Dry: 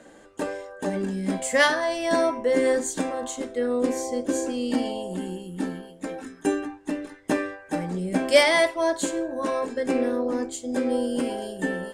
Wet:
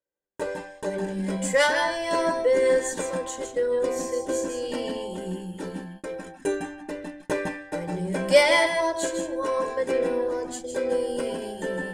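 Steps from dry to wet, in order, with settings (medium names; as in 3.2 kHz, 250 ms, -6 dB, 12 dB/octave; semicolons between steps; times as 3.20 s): gate -37 dBFS, range -42 dB; reverberation, pre-delay 156 ms, DRR 5.5 dB; trim -3 dB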